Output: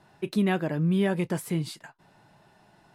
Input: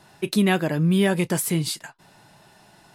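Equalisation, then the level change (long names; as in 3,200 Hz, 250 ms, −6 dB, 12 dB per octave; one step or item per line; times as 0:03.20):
high-shelf EQ 3,300 Hz −11 dB
−4.5 dB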